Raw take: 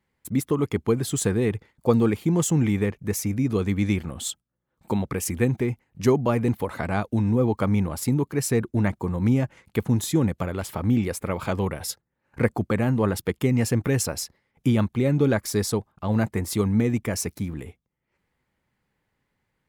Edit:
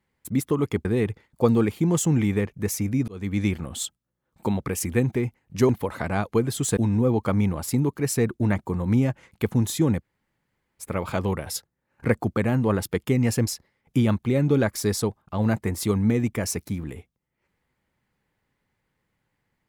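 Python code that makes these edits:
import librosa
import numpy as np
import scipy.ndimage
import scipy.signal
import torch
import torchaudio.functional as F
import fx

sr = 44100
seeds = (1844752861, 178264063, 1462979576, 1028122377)

y = fx.edit(x, sr, fx.move(start_s=0.85, length_s=0.45, to_s=7.11),
    fx.fade_in_span(start_s=3.53, length_s=0.46, curve='qsin'),
    fx.cut(start_s=6.14, length_s=0.34),
    fx.room_tone_fill(start_s=10.36, length_s=0.8, crossfade_s=0.06),
    fx.cut(start_s=13.81, length_s=0.36), tone=tone)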